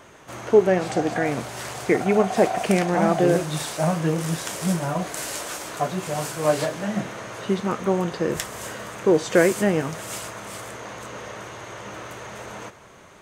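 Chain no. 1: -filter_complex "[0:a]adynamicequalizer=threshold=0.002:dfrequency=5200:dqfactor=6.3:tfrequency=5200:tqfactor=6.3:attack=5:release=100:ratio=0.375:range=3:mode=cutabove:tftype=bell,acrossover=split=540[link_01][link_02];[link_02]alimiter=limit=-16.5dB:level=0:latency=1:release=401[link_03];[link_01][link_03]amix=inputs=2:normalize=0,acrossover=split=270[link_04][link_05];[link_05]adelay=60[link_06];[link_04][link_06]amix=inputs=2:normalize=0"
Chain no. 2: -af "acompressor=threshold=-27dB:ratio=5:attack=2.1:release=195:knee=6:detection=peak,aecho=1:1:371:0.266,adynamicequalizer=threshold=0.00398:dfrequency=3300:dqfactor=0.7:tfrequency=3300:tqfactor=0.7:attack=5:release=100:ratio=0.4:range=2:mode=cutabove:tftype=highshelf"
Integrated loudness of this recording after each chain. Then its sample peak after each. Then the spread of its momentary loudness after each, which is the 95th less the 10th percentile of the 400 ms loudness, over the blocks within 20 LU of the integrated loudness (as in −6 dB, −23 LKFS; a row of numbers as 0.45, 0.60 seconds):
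−25.5, −33.5 LKFS; −6.5, −12.5 dBFS; 16, 6 LU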